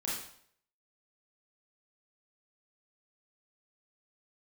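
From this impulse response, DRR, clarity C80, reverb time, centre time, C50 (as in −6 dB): −6.5 dB, 5.5 dB, 0.60 s, 56 ms, 1.0 dB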